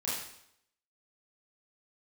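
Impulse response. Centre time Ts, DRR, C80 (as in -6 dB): 63 ms, -8.5 dB, 4.5 dB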